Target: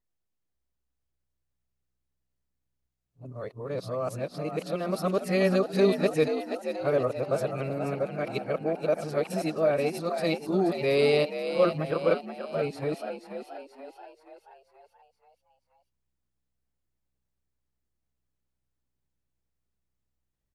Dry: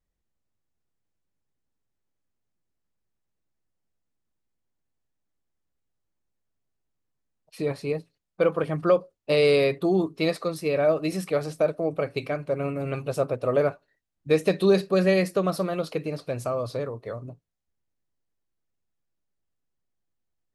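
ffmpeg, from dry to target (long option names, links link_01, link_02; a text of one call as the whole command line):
ffmpeg -i in.wav -filter_complex "[0:a]areverse,asplit=7[link_01][link_02][link_03][link_04][link_05][link_06][link_07];[link_02]adelay=480,afreqshift=63,volume=-8.5dB[link_08];[link_03]adelay=960,afreqshift=126,volume=-14.5dB[link_09];[link_04]adelay=1440,afreqshift=189,volume=-20.5dB[link_10];[link_05]adelay=1920,afreqshift=252,volume=-26.6dB[link_11];[link_06]adelay=2400,afreqshift=315,volume=-32.6dB[link_12];[link_07]adelay=2880,afreqshift=378,volume=-38.6dB[link_13];[link_01][link_08][link_09][link_10][link_11][link_12][link_13]amix=inputs=7:normalize=0,volume=-3dB" out.wav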